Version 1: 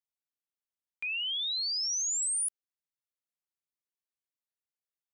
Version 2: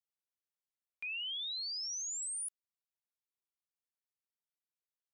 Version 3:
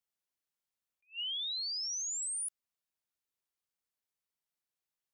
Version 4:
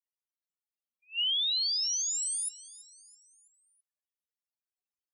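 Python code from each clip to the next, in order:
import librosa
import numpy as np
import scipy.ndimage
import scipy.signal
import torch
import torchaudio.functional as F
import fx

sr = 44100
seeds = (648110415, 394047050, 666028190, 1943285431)

y1 = fx.rider(x, sr, range_db=10, speed_s=0.5)
y1 = F.gain(torch.from_numpy(y1), -7.0).numpy()
y2 = fx.attack_slew(y1, sr, db_per_s=310.0)
y2 = F.gain(torch.from_numpy(y2), 2.5).numpy()
y3 = fx.spec_topn(y2, sr, count=4)
y3 = fx.echo_feedback(y3, sr, ms=330, feedback_pct=48, wet_db=-18.5)
y3 = F.gain(torch.from_numpy(y3), 9.0).numpy()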